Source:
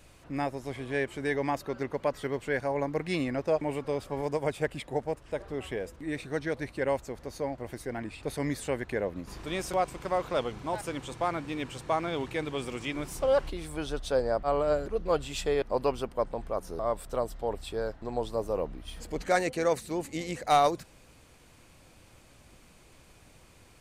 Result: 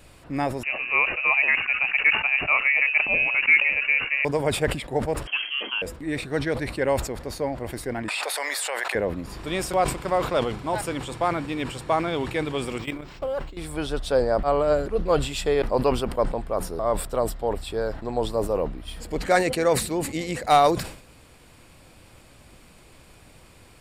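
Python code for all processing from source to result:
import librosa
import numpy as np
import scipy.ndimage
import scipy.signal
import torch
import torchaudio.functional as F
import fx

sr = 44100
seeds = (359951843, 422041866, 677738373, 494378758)

y = fx.chain(x, sr, fx.peak_eq(hz=530.0, db=3.5, octaves=2.4),
    fx.freq_invert(carrier_hz=2800), at=(0.63, 4.25))
y = fx.chain(y, sr, fx.freq_invert(carrier_hz=3200),
    fx.brickwall_highpass(low_hz=200.0), at=(5.27, 5.82))
y = fx.chain(y, sr, fx.highpass(hz=660.0, slope=24),
    fx.env_flatten(amount_pct=100), at=(8.08, 8.95))
y = fx.chain(y, sr, fx.level_steps(step_db=16),
    fx.brickwall_lowpass(high_hz=12000.0),
    fx.resample_linear(factor=4), at=(12.78, 13.57))
y = fx.notch(y, sr, hz=6200.0, q=7.0)
y = fx.sustainer(y, sr, db_per_s=95.0)
y = F.gain(torch.from_numpy(y), 5.5).numpy()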